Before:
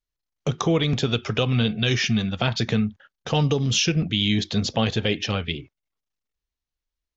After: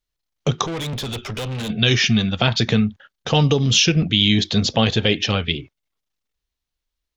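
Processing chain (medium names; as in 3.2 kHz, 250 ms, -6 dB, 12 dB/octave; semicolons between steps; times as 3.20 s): peaking EQ 3.6 kHz +3 dB 0.77 oct; 0.66–1.70 s: valve stage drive 29 dB, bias 0.4; trim +4.5 dB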